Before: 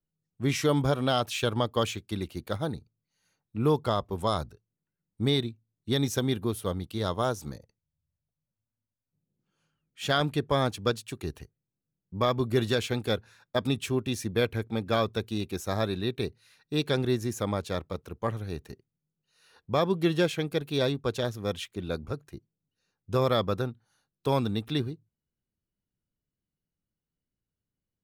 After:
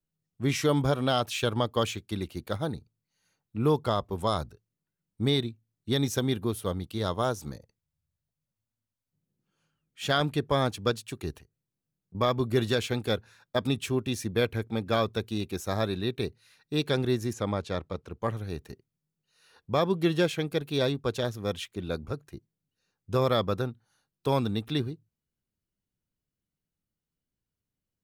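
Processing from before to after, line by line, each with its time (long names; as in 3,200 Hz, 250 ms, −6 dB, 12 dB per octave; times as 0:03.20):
0:11.38–0:12.15: downward compressor 2.5 to 1, threshold −56 dBFS
0:17.33–0:18.21: high-frequency loss of the air 54 metres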